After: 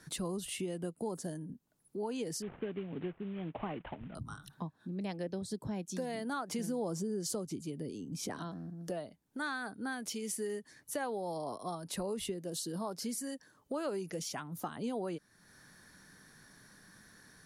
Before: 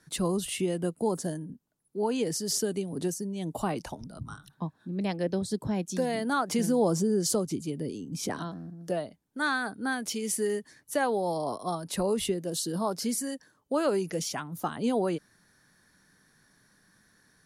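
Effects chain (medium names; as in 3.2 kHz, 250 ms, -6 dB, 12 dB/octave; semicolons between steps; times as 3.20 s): 2.42–4.15 s: CVSD coder 16 kbps; compression 2:1, threshold -52 dBFS, peak gain reduction 17 dB; trim +5 dB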